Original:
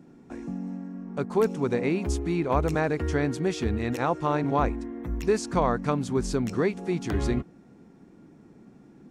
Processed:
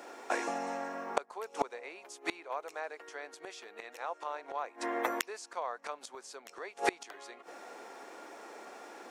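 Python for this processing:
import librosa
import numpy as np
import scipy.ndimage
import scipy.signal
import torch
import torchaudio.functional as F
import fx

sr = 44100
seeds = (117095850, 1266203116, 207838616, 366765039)

y = scipy.signal.sosfilt(scipy.signal.butter(4, 560.0, 'highpass', fs=sr, output='sos'), x)
y = fx.gate_flip(y, sr, shuts_db=-31.0, range_db=-28)
y = y * librosa.db_to_amplitude(17.0)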